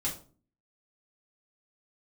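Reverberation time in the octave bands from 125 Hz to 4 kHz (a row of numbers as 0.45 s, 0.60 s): 0.60 s, 0.65 s, 0.45 s, 0.35 s, 0.30 s, 0.30 s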